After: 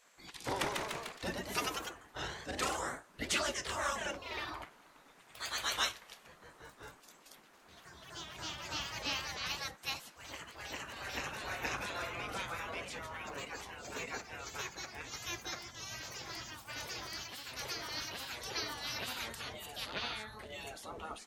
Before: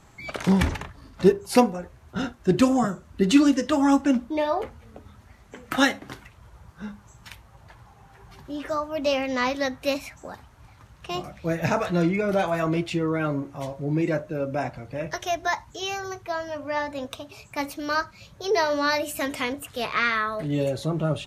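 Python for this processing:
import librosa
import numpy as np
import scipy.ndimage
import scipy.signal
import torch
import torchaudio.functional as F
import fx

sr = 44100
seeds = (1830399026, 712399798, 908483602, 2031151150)

y = fx.spec_gate(x, sr, threshold_db=-15, keep='weak')
y = fx.echo_pitch(y, sr, ms=181, semitones=1, count=3, db_per_echo=-3.0)
y = F.gain(torch.from_numpy(y), -5.5).numpy()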